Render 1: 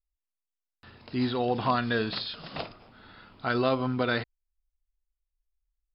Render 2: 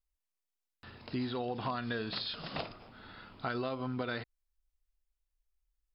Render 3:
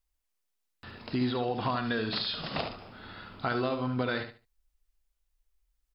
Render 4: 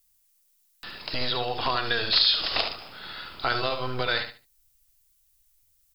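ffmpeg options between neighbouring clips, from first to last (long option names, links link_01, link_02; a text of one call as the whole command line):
ffmpeg -i in.wav -af "acompressor=threshold=-33dB:ratio=6" out.wav
ffmpeg -i in.wav -af "aecho=1:1:72|144|216:0.376|0.0827|0.0182,volume=5dB" out.wav
ffmpeg -i in.wav -filter_complex "[0:a]acrossover=split=370[link_01][link_02];[link_01]aeval=exprs='abs(val(0))':channel_layout=same[link_03];[link_02]crystalizer=i=5.5:c=0[link_04];[link_03][link_04]amix=inputs=2:normalize=0,volume=2dB" out.wav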